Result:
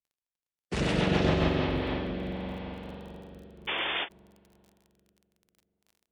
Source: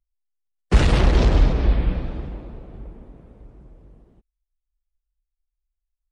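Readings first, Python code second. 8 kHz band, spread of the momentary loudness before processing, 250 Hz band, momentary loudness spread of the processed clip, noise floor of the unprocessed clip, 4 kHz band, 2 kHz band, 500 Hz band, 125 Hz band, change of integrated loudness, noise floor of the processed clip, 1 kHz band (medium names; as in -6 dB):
no reading, 16 LU, -2.5 dB, 18 LU, -82 dBFS, +1.0 dB, -0.5 dB, -2.5 dB, -10.0 dB, -9.5 dB, under -85 dBFS, -3.0 dB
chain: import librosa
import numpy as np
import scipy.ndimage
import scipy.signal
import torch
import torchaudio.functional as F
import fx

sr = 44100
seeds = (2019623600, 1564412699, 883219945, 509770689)

y = fx.rev_spring(x, sr, rt60_s=3.9, pass_ms=(43,), chirp_ms=65, drr_db=-6.0)
y = fx.rotary_switch(y, sr, hz=7.5, then_hz=0.6, switch_at_s=1.25)
y = scipy.signal.sosfilt(scipy.signal.butter(2, 110.0, 'highpass', fs=sr, output='sos'), y)
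y = y + 10.0 ** (-6.5 / 20.0) * np.pad(y, (int(97 * sr / 1000.0), 0))[:len(y)]
y = fx.spec_paint(y, sr, seeds[0], shape='noise', start_s=3.67, length_s=0.42, low_hz=270.0, high_hz=3600.0, level_db=-24.0)
y = fx.low_shelf(y, sr, hz=420.0, db=-5.5)
y = fx.dmg_crackle(y, sr, seeds[1], per_s=25.0, level_db=-38.0)
y = fx.peak_eq(y, sr, hz=1300.0, db=-3.5, octaves=0.77)
y = fx.end_taper(y, sr, db_per_s=350.0)
y = y * librosa.db_to_amplitude(-5.5)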